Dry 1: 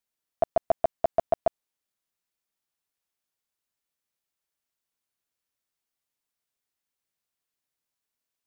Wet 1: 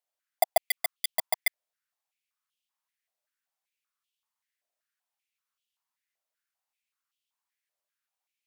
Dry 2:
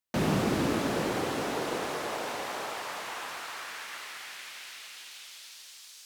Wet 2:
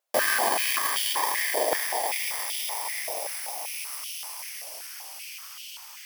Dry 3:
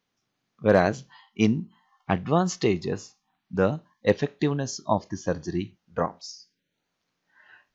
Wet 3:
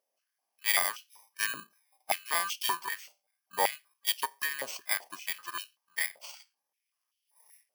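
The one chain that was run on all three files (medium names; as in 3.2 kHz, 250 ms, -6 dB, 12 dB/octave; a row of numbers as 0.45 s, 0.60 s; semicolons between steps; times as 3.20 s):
bit-reversed sample order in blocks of 32 samples; wow and flutter 23 cents; step-sequenced high-pass 5.2 Hz 610–3000 Hz; peak normalisation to -9 dBFS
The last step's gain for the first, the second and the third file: -4.0 dB, +5.5 dB, -5.5 dB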